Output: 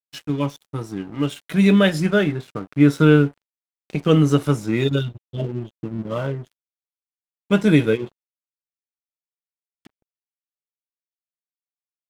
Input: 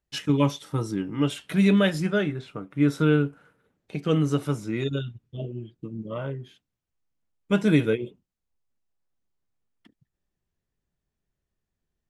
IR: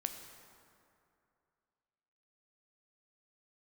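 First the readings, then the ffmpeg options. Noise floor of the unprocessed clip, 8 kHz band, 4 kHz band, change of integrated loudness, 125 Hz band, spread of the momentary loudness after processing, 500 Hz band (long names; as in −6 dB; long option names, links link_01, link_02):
−84 dBFS, +3.5 dB, +4.5 dB, +5.5 dB, +5.5 dB, 16 LU, +6.0 dB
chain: -af "dynaudnorm=framelen=140:gausssize=21:maxgain=15.5dB,aeval=exprs='sgn(val(0))*max(abs(val(0))-0.0112,0)':channel_layout=same,volume=-1dB"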